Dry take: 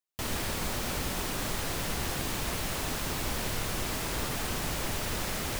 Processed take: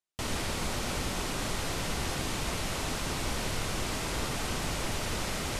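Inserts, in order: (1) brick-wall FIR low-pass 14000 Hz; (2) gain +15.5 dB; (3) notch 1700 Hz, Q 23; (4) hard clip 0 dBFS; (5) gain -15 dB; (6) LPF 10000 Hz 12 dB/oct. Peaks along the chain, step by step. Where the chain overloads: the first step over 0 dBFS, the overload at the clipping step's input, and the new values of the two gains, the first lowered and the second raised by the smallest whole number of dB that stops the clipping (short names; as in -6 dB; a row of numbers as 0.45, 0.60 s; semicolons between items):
-19.5, -4.0, -4.0, -4.0, -19.0, -19.0 dBFS; no overload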